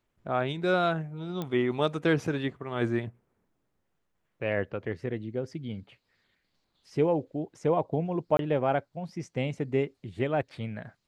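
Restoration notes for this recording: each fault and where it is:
0:01.42: click −20 dBFS
0:08.37–0:08.39: drop-out 22 ms

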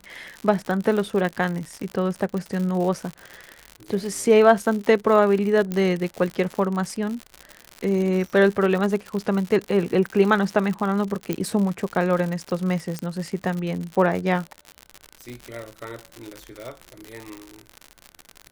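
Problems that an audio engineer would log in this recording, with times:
surface crackle 95 per second −27 dBFS
0:05.72: click −14 dBFS
0:11.33: click −11 dBFS
0:12.99: click −14 dBFS

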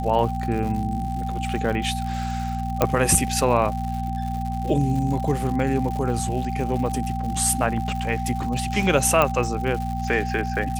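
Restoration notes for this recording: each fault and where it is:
surface crackle 160 per second −30 dBFS
mains hum 60 Hz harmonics 4 −28 dBFS
whistle 780 Hz −29 dBFS
0:02.82: click −5 dBFS
0:09.22: click −6 dBFS

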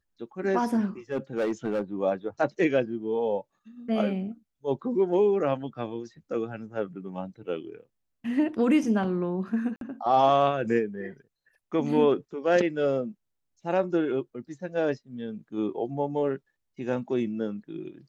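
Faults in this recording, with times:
0:01.12–0:01.82: clipping −23 dBFS
0:09.76–0:09.81: drop-out 52 ms

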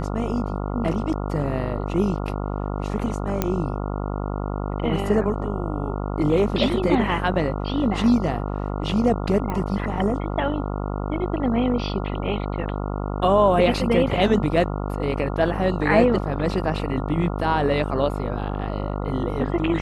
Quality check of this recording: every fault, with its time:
mains buzz 50 Hz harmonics 28 −27 dBFS
0:03.42: click −7 dBFS
0:09.50: click −16 dBFS

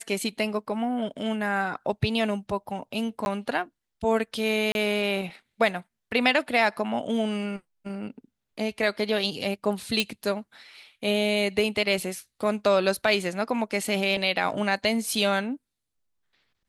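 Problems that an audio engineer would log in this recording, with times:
0:03.25–0:03.26: drop-out 11 ms
0:04.72–0:04.75: drop-out 31 ms
0:10.00: click −10 dBFS

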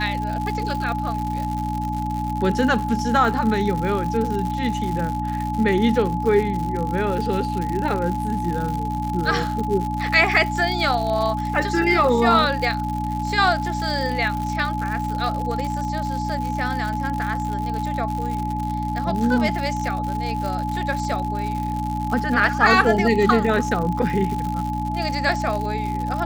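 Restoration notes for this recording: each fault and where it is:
surface crackle 130 per second −26 dBFS
mains hum 60 Hz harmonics 5 −27 dBFS
whistle 850 Hz −26 dBFS

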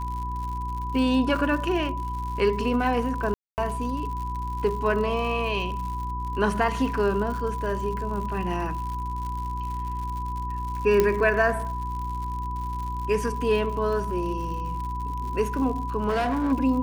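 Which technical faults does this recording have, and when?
surface crackle 110 per second −33 dBFS
mains hum 60 Hz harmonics 6 −32 dBFS
whistle 990 Hz −31 dBFS
0:03.34–0:03.58: drop-out 239 ms
0:11.00: click −8 dBFS
0:16.08–0:16.53: clipping −20.5 dBFS

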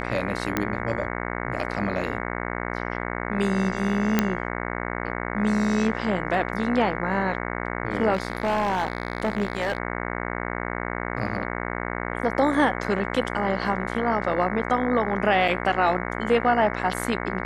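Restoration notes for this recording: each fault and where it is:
mains buzz 60 Hz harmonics 37 −30 dBFS
0:00.57: click −9 dBFS
0:04.19: click −5 dBFS
0:08.13–0:09.78: clipping −18 dBFS
0:15.48: drop-out 4.1 ms

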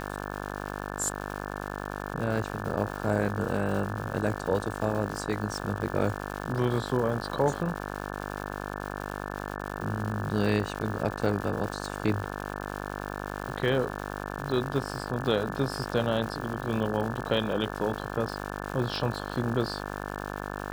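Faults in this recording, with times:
mains buzz 50 Hz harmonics 35 −36 dBFS
surface crackle 270 per second −35 dBFS

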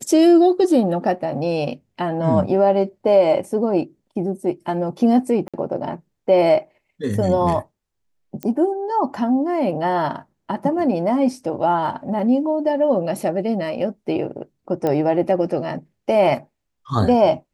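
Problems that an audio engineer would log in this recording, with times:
0:05.48–0:05.54: drop-out 56 ms
0:08.43: click −13 dBFS
0:14.87: click −11 dBFS

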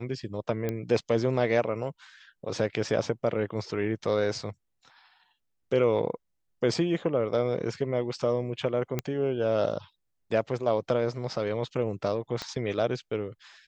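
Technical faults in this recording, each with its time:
0:00.69: click −17 dBFS
0:08.99: click −14 dBFS
0:12.42: click −19 dBFS

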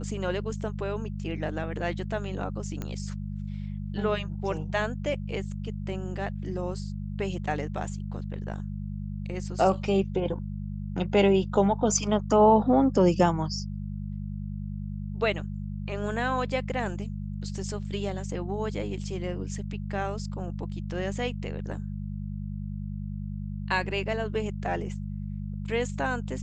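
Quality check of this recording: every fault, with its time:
mains hum 50 Hz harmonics 4 −34 dBFS
0:02.82: click −20 dBFS

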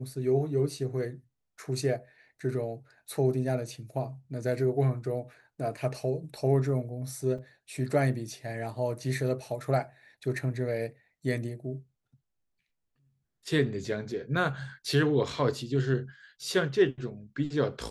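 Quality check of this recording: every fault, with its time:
0:07.38: drop-out 5 ms

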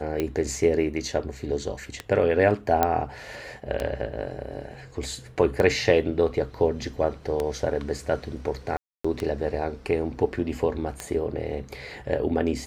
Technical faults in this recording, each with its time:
scratch tick 33 1/3 rpm −13 dBFS
0:02.83: click −7 dBFS
0:08.77–0:09.04: drop-out 275 ms

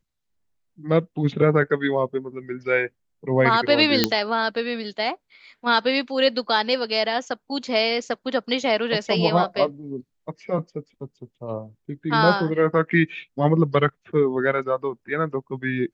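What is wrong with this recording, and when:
0:04.04: click −1 dBFS

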